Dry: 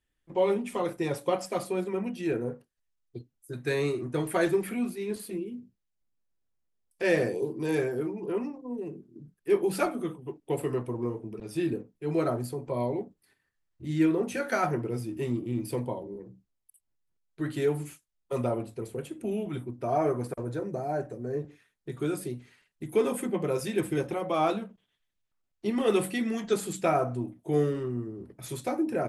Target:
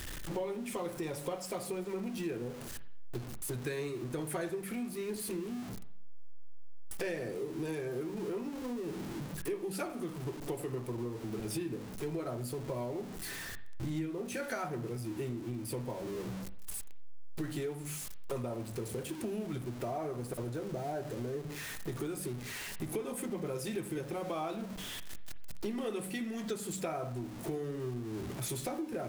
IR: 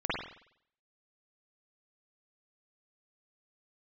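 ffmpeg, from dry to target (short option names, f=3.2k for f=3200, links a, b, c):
-filter_complex "[0:a]aeval=exprs='val(0)+0.5*0.0126*sgn(val(0))':c=same,bass=f=250:g=3,treble=f=4k:g=3,bandreject=f=50:t=h:w=6,bandreject=f=100:t=h:w=6,bandreject=f=150:t=h:w=6,bandreject=f=200:t=h:w=6,bandreject=f=250:t=h:w=6,acompressor=threshold=-36dB:ratio=6,asplit=2[a][b];[1:a]atrim=start_sample=2205[c];[b][c]afir=irnorm=-1:irlink=0,volume=-20dB[d];[a][d]amix=inputs=2:normalize=0"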